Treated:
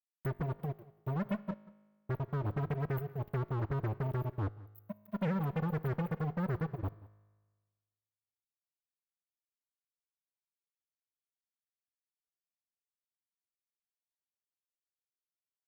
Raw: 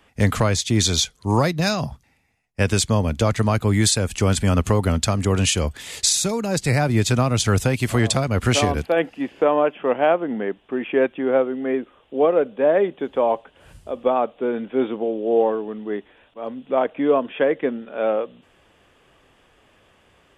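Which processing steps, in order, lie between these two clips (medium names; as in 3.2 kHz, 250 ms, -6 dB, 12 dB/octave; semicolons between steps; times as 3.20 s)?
expander on every frequency bin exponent 3; word length cut 10-bit, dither none; treble shelf 5.4 kHz +5.5 dB; phase dispersion lows, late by 131 ms, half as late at 1.8 kHz; compression 16:1, threshold -36 dBFS, peak gain reduction 21 dB; FFT band-reject 170–11000 Hz; wide varispeed 1.3×; fuzz box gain 46 dB, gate -53 dBFS; tone controls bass -8 dB, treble -11 dB; feedback comb 52 Hz, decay 1.4 s, harmonics all, mix 40%; delay 183 ms -21.5 dB; trim -7 dB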